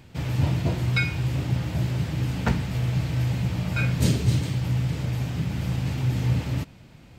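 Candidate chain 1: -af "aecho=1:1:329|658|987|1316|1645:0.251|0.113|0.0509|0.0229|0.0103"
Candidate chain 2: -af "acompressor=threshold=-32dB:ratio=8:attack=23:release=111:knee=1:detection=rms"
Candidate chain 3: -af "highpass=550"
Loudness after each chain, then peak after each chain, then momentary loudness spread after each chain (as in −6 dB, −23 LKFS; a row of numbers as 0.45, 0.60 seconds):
−25.5, −35.0, −35.0 LKFS; −8.0, −21.5, −12.5 dBFS; 6, 1, 11 LU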